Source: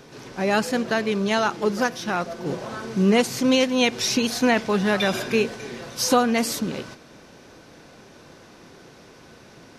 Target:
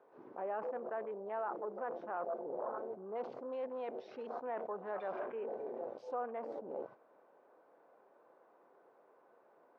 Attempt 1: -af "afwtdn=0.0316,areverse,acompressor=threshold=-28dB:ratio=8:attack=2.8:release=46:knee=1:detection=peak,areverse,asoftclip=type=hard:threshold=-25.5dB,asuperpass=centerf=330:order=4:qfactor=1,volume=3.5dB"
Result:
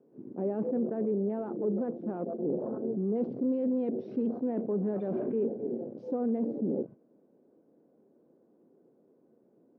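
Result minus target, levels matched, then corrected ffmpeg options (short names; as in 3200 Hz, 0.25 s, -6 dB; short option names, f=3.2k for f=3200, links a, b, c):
1000 Hz band -14.5 dB; compressor: peak gain reduction -8.5 dB
-af "afwtdn=0.0316,areverse,acompressor=threshold=-37.5dB:ratio=8:attack=2.8:release=46:knee=1:detection=peak,areverse,asoftclip=type=hard:threshold=-25.5dB,asuperpass=centerf=720:order=4:qfactor=1,volume=3.5dB"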